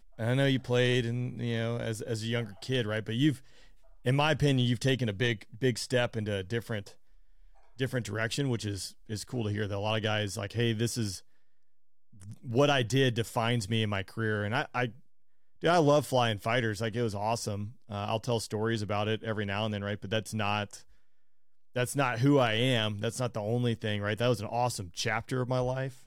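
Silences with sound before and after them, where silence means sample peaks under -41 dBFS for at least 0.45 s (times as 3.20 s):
3.38–4.05 s
6.89–7.79 s
11.19–12.22 s
14.91–15.63 s
20.78–21.76 s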